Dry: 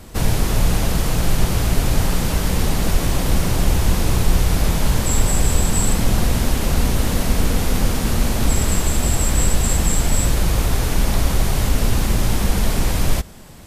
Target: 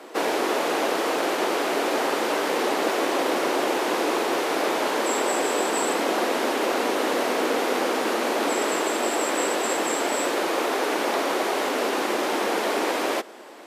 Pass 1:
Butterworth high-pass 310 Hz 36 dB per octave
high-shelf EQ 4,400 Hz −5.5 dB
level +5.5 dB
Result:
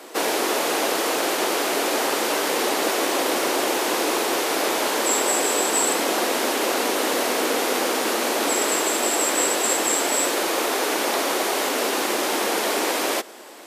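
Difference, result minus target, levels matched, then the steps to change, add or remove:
8,000 Hz band +6.5 dB
change: high-shelf EQ 4,400 Hz −17.5 dB

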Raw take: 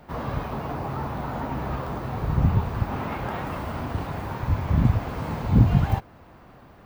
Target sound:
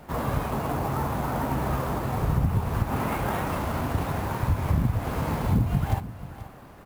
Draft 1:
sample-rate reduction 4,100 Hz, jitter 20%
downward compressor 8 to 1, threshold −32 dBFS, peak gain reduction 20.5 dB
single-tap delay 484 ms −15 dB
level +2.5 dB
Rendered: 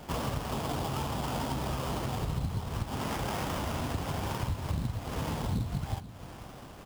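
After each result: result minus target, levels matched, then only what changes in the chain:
downward compressor: peak gain reduction +9 dB; sample-rate reduction: distortion +8 dB
change: downward compressor 8 to 1, threshold −21.5 dBFS, peak gain reduction 11.5 dB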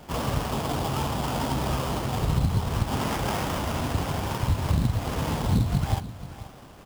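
sample-rate reduction: distortion +8 dB
change: sample-rate reduction 13,000 Hz, jitter 20%

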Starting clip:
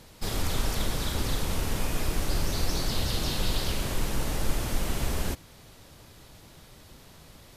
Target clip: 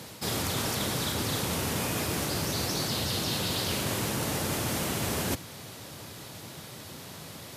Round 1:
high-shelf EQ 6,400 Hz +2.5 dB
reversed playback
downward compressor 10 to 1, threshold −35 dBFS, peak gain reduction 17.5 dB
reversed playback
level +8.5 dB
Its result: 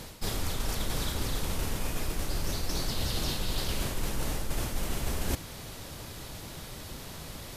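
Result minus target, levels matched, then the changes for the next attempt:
125 Hz band +3.0 dB
add first: high-pass filter 95 Hz 24 dB per octave

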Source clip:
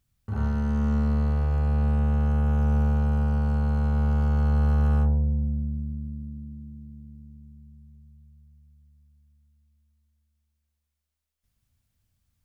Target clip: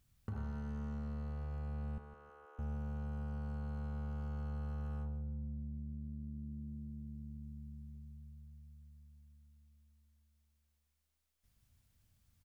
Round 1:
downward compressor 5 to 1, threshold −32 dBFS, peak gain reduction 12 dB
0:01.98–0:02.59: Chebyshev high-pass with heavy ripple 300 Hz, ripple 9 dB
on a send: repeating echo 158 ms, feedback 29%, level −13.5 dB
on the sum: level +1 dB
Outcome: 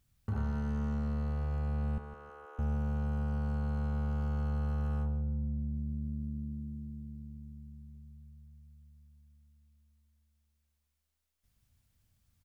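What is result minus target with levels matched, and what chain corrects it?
downward compressor: peak gain reduction −8 dB
downward compressor 5 to 1, threshold −42 dBFS, peak gain reduction 20 dB
0:01.98–0:02.59: Chebyshev high-pass with heavy ripple 300 Hz, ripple 9 dB
on a send: repeating echo 158 ms, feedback 29%, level −13.5 dB
on the sum: level +1 dB

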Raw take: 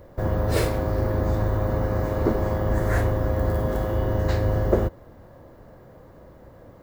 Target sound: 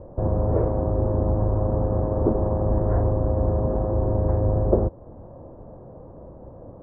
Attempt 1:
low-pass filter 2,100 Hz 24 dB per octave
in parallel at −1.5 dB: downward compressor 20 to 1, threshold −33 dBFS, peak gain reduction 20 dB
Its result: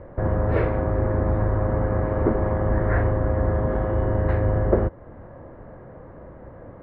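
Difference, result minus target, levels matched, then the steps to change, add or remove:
2,000 Hz band +18.0 dB
change: low-pass filter 950 Hz 24 dB per octave

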